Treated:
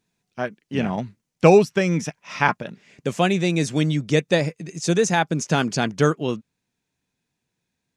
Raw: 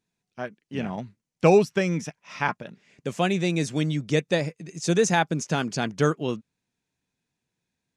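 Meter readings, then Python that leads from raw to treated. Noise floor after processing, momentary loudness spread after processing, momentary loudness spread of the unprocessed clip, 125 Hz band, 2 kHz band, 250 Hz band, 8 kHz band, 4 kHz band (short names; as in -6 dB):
-80 dBFS, 14 LU, 17 LU, +4.0 dB, +4.0 dB, +4.0 dB, +3.0 dB, +4.0 dB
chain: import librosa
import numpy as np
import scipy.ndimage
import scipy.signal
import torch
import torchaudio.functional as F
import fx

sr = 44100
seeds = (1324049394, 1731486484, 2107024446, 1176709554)

y = fx.rider(x, sr, range_db=3, speed_s=0.5)
y = F.gain(torch.from_numpy(y), 3.5).numpy()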